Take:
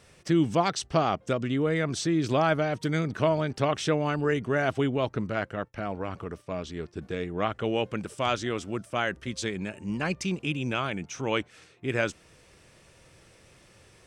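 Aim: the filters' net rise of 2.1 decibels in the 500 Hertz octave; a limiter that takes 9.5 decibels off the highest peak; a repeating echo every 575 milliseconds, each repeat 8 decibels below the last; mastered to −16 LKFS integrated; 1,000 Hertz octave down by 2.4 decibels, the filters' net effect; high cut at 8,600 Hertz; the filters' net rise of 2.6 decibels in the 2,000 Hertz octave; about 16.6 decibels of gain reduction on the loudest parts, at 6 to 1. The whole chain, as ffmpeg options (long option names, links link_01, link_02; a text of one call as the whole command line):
ffmpeg -i in.wav -af "lowpass=8600,equalizer=frequency=500:width_type=o:gain=4.5,equalizer=frequency=1000:width_type=o:gain=-7,equalizer=frequency=2000:width_type=o:gain=5.5,acompressor=threshold=-37dB:ratio=6,alimiter=level_in=10dB:limit=-24dB:level=0:latency=1,volume=-10dB,aecho=1:1:575|1150|1725|2300|2875:0.398|0.159|0.0637|0.0255|0.0102,volume=27.5dB" out.wav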